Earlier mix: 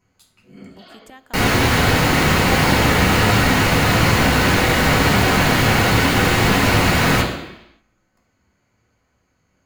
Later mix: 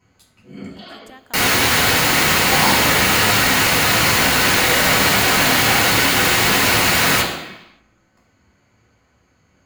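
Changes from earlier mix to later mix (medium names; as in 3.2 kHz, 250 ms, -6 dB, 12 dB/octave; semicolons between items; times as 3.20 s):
first sound: send +7.0 dB; second sound: add tilt EQ +2.5 dB/octave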